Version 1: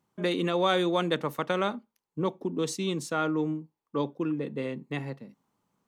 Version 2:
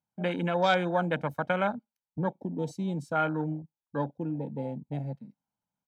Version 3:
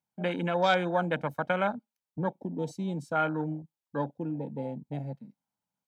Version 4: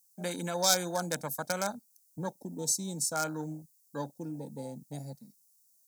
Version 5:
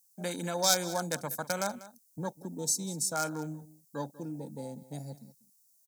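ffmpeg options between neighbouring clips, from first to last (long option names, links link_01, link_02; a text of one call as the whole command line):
ffmpeg -i in.wav -af "afwtdn=0.02,aecho=1:1:1.3:0.64" out.wav
ffmpeg -i in.wav -af "lowshelf=frequency=83:gain=-8" out.wav
ffmpeg -i in.wav -af "aeval=exprs='clip(val(0),-1,0.119)':channel_layout=same,aexciter=amount=13.1:drive=9.8:freq=4700,volume=-5.5dB" out.wav
ffmpeg -i in.wav -af "aecho=1:1:193:0.133" out.wav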